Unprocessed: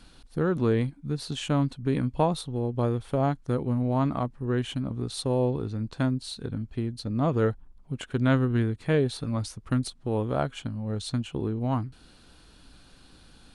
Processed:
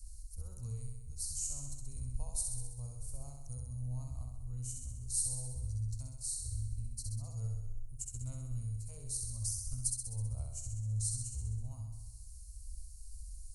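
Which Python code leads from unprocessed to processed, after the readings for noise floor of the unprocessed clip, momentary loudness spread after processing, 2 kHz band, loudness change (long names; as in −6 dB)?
−55 dBFS, 14 LU, below −35 dB, −11.5 dB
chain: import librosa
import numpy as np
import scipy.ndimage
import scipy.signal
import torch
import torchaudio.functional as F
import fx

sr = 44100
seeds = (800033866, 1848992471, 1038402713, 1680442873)

y = scipy.signal.sosfilt(scipy.signal.cheby2(4, 40, [150.0, 3600.0], 'bandstop', fs=sr, output='sos'), x)
y = fx.room_flutter(y, sr, wall_m=11.1, rt60_s=1.0)
y = F.gain(torch.from_numpy(y), 7.0).numpy()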